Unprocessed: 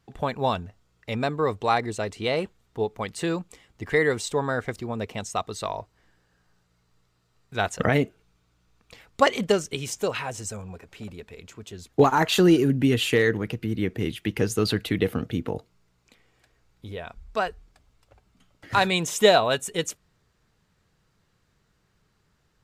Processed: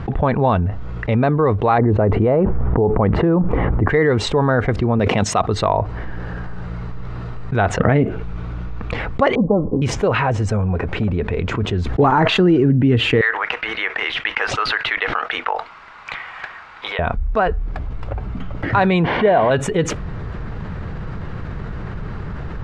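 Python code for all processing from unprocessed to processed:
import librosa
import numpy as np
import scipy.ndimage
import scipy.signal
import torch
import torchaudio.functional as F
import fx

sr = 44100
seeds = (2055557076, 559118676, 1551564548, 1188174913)

y = fx.chain(x, sr, fx.lowpass(hz=1100.0, slope=12),
    fx.env_flatten(amount_pct=70), at=(1.78, 3.88))
y = fx.chain(y, sr, fx.highpass(hz=110.0, slope=12),
    fx.high_shelf(hz=2500.0, db=9.5),
    fx.sustainer(db_per_s=38.0), at=(4.99, 5.42))
y = fx.chain(y, sr, fx.steep_lowpass(hz=1100.0, slope=72),
    fx.comb(ms=3.8, depth=0.55), at=(9.35, 9.82))
y = fx.chain(y, sr, fx.block_float(bits=7),
    fx.sustainer(db_per_s=74.0), at=(11.47, 12.39))
y = fx.chain(y, sr, fx.highpass(hz=930.0, slope=24),
    fx.resample_linear(factor=3), at=(13.21, 16.99))
y = fx.chain(y, sr, fx.delta_mod(bps=32000, step_db=-21.5),
    fx.lowpass(hz=3200.0, slope=24),
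    fx.notch_comb(f0_hz=1300.0), at=(19.04, 19.51))
y = scipy.signal.sosfilt(scipy.signal.butter(2, 1700.0, 'lowpass', fs=sr, output='sos'), y)
y = fx.low_shelf(y, sr, hz=140.0, db=8.0)
y = fx.env_flatten(y, sr, amount_pct=70)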